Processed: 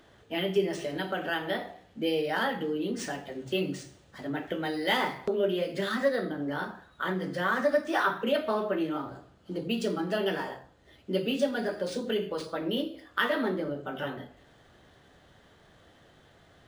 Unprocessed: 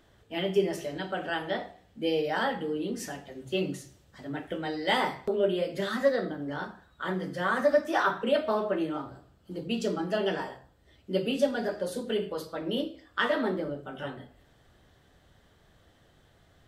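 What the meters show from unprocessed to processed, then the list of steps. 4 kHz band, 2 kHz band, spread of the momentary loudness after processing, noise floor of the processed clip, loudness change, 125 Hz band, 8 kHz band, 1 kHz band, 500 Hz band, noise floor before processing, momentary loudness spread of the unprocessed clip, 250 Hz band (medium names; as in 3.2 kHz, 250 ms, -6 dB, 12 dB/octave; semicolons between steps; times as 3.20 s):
+1.0 dB, +1.0 dB, 10 LU, -59 dBFS, -0.5 dB, 0.0 dB, -0.5 dB, -0.5 dB, -1.0 dB, -62 dBFS, 12 LU, +0.5 dB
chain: dynamic bell 700 Hz, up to -4 dB, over -36 dBFS, Q 0.83; in parallel at -1 dB: compression, threshold -36 dBFS, peak gain reduction 14.5 dB; on the sum: bass shelf 100 Hz -10.5 dB; decimation joined by straight lines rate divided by 3×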